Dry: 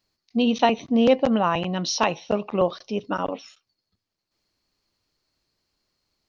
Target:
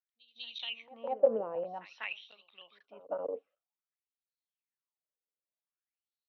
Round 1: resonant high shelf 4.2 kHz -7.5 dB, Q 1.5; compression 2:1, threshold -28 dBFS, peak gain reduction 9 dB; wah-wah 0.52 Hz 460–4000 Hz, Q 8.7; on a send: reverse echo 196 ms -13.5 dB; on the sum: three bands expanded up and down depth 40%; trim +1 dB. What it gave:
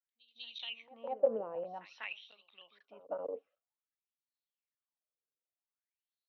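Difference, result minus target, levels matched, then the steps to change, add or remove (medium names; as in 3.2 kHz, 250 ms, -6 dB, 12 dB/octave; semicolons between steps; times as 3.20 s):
compression: peak gain reduction +4 dB
change: compression 2:1, threshold -20.5 dBFS, peak gain reduction 5 dB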